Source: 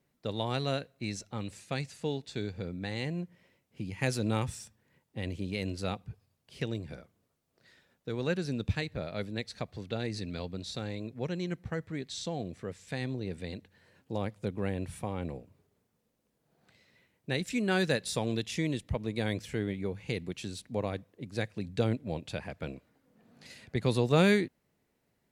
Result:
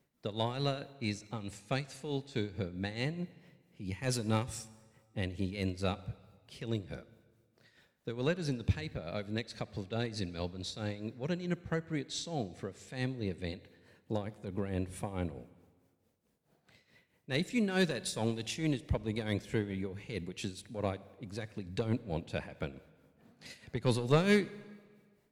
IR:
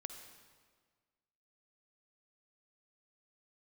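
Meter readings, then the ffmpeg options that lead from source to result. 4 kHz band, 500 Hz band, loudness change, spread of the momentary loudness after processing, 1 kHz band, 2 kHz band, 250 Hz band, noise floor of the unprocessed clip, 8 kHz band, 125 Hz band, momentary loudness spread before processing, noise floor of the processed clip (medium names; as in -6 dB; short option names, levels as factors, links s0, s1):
-2.0 dB, -2.5 dB, -2.0 dB, 13 LU, -2.5 dB, -3.0 dB, -2.0 dB, -77 dBFS, -1.0 dB, -1.5 dB, 12 LU, -73 dBFS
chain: -filter_complex "[0:a]asoftclip=type=tanh:threshold=0.106,tremolo=f=4.6:d=0.72,asplit=2[s0][s1];[1:a]atrim=start_sample=2205[s2];[s1][s2]afir=irnorm=-1:irlink=0,volume=0.501[s3];[s0][s3]amix=inputs=2:normalize=0"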